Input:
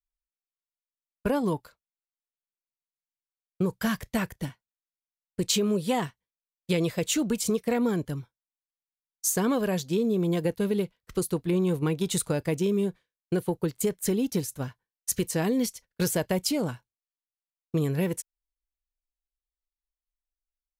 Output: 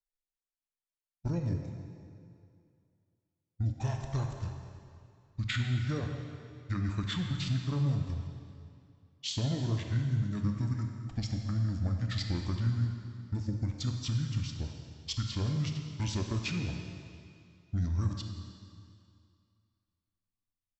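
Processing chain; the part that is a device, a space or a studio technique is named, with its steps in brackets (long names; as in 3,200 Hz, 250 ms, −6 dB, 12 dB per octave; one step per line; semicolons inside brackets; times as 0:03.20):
monster voice (pitch shifter −9 semitones; formants moved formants −3 semitones; low-shelf EQ 100 Hz +7 dB; convolution reverb RT60 2.5 s, pre-delay 23 ms, DRR 3 dB)
level −9 dB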